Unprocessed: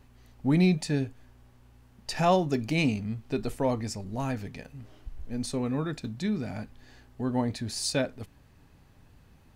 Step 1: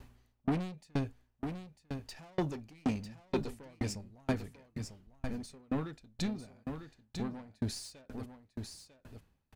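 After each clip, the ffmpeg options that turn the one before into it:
-af "asoftclip=type=tanh:threshold=0.0335,aecho=1:1:948:0.447,aeval=exprs='val(0)*pow(10,-37*if(lt(mod(2.1*n/s,1),2*abs(2.1)/1000),1-mod(2.1*n/s,1)/(2*abs(2.1)/1000),(mod(2.1*n/s,1)-2*abs(2.1)/1000)/(1-2*abs(2.1)/1000))/20)':c=same,volume=1.78"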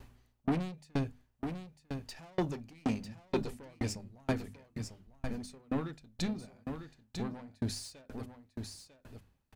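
-af "bandreject=f=50:t=h:w=6,bandreject=f=100:t=h:w=6,bandreject=f=150:t=h:w=6,bandreject=f=200:t=h:w=6,bandreject=f=250:t=h:w=6,volume=1.12"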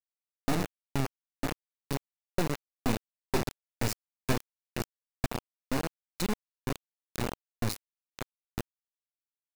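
-af "bandreject=f=287.3:t=h:w=4,bandreject=f=574.6:t=h:w=4,bandreject=f=861.9:t=h:w=4,bandreject=f=1149.2:t=h:w=4,bandreject=f=1436.5:t=h:w=4,bandreject=f=1723.8:t=h:w=4,bandreject=f=2011.1:t=h:w=4,bandreject=f=2298.4:t=h:w=4,bandreject=f=2585.7:t=h:w=4,bandreject=f=2873:t=h:w=4,acrusher=bits=3:dc=4:mix=0:aa=0.000001,bandreject=f=3200:w=11,volume=2.24"

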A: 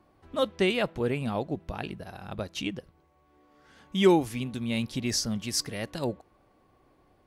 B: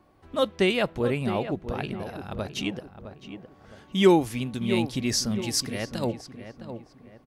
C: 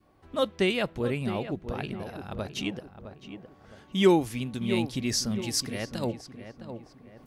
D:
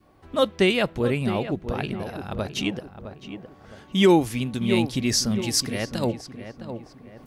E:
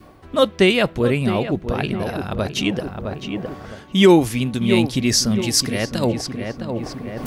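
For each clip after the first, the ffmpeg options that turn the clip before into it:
-filter_complex "[0:a]asplit=2[s0][s1];[s1]adelay=662,lowpass=f=1800:p=1,volume=0.316,asplit=2[s2][s3];[s3]adelay=662,lowpass=f=1800:p=1,volume=0.41,asplit=2[s4][s5];[s5]adelay=662,lowpass=f=1800:p=1,volume=0.41,asplit=2[s6][s7];[s7]adelay=662,lowpass=f=1800:p=1,volume=0.41[s8];[s0][s2][s4][s6][s8]amix=inputs=5:normalize=0,volume=1.33"
-af "adynamicequalizer=threshold=0.0158:dfrequency=780:dqfactor=0.75:tfrequency=780:tqfactor=0.75:attack=5:release=100:ratio=0.375:range=2:mode=cutabove:tftype=bell,areverse,acompressor=mode=upward:threshold=0.00631:ratio=2.5,areverse,volume=0.794"
-af "alimiter=level_in=3.55:limit=0.891:release=50:level=0:latency=1,volume=0.531"
-af "bandreject=f=820:w=21,areverse,acompressor=mode=upward:threshold=0.0708:ratio=2.5,areverse,volume=1.78"

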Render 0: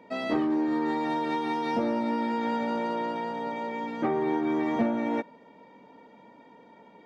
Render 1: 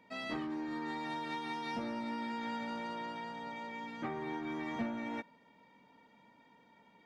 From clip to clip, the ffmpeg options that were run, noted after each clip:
-af "equalizer=f=450:w=0.55:g=-12,volume=0.668"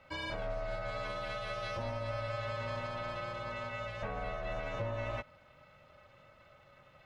-filter_complex "[0:a]acrossover=split=200[s0][s1];[s1]alimiter=level_in=3.35:limit=0.0631:level=0:latency=1:release=130,volume=0.299[s2];[s0][s2]amix=inputs=2:normalize=0,aeval=exprs='val(0)*sin(2*PI*340*n/s)':c=same,volume=2.11"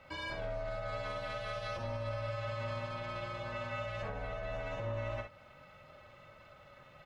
-af "alimiter=level_in=2.99:limit=0.0631:level=0:latency=1:release=187,volume=0.335,aecho=1:1:46|65:0.376|0.376,volume=1.33"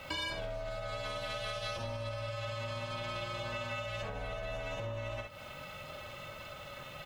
-af "acompressor=threshold=0.00562:ratio=10,aexciter=amount=2.3:drive=5.3:freq=2700,volume=2.99"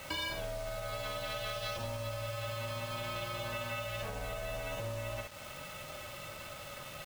-af "acrusher=bits=7:mix=0:aa=0.000001"

